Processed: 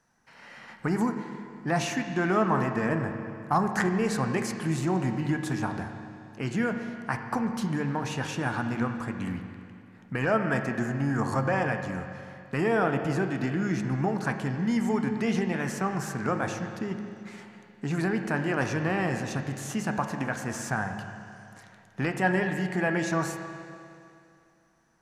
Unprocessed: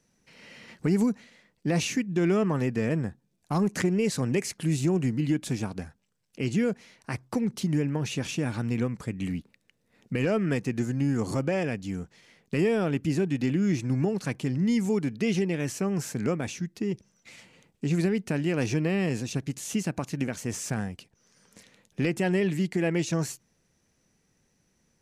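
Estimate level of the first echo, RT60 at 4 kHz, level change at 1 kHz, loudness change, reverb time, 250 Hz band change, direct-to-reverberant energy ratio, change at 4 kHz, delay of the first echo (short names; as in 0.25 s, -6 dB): none, 2.5 s, +9.0 dB, -0.5 dB, 2.5 s, -2.0 dB, 5.0 dB, -2.5 dB, none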